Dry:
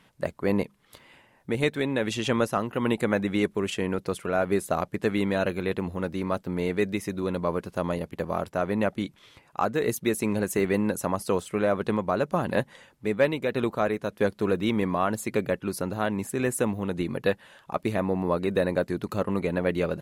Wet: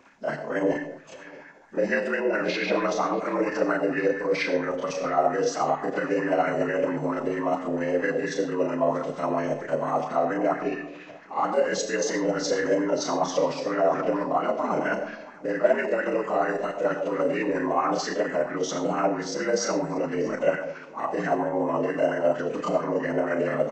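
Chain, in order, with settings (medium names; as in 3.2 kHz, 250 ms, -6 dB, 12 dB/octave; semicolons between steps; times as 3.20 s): frequency axis rescaled in octaves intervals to 77%; in parallel at -2 dB: compressor with a negative ratio -33 dBFS, ratio -1; on the sum: wow and flutter 27 cents; granular stretch 1.6×, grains 192 ms; delay 860 ms -22 dB; algorithmic reverb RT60 0.89 s, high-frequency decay 0.45×, pre-delay 55 ms, DRR 6.5 dB; speed mistake 33 rpm record played at 45 rpm; sweeping bell 4.4 Hz 490–1800 Hz +10 dB; trim -3 dB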